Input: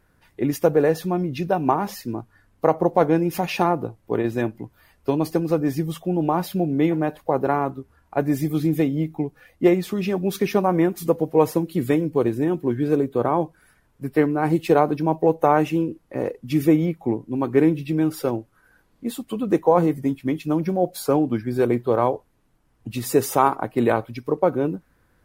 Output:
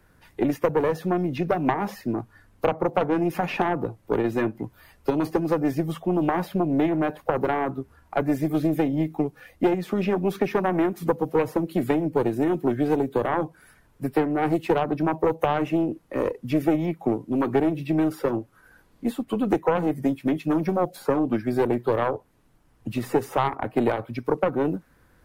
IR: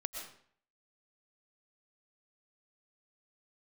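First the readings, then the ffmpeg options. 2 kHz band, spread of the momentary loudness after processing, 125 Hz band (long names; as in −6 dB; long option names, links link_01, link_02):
−0.5 dB, 7 LU, −4.0 dB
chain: -filter_complex "[0:a]aeval=exprs='0.668*(cos(1*acos(clip(val(0)/0.668,-1,1)))-cos(1*PI/2))+0.168*(cos(4*acos(clip(val(0)/0.668,-1,1)))-cos(4*PI/2))':channel_layout=same,acrossover=split=90|210|2400[link_01][link_02][link_03][link_04];[link_01]acompressor=threshold=-51dB:ratio=4[link_05];[link_02]acompressor=threshold=-36dB:ratio=4[link_06];[link_03]acompressor=threshold=-24dB:ratio=4[link_07];[link_04]acompressor=threshold=-52dB:ratio=4[link_08];[link_05][link_06][link_07][link_08]amix=inputs=4:normalize=0,volume=3.5dB"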